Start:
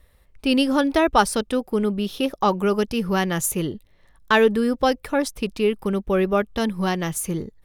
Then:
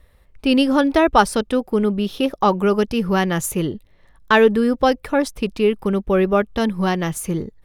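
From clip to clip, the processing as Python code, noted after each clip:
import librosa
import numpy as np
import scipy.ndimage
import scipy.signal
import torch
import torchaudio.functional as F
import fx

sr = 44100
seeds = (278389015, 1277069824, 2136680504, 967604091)

y = fx.high_shelf(x, sr, hz=4100.0, db=-6.0)
y = F.gain(torch.from_numpy(y), 3.5).numpy()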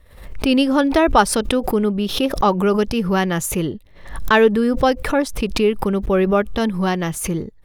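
y = fx.pre_swell(x, sr, db_per_s=84.0)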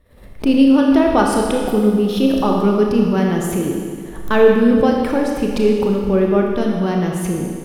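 y = fx.peak_eq(x, sr, hz=260.0, db=9.0, octaves=2.6)
y = fx.rev_schroeder(y, sr, rt60_s=1.9, comb_ms=26, drr_db=0.0)
y = F.gain(torch.from_numpy(y), -7.5).numpy()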